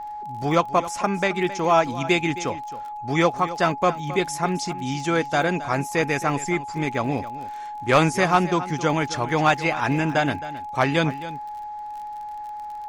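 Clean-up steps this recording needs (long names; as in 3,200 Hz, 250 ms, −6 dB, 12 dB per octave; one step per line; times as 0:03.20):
clipped peaks rebuilt −8 dBFS
click removal
notch filter 840 Hz, Q 30
echo removal 267 ms −15 dB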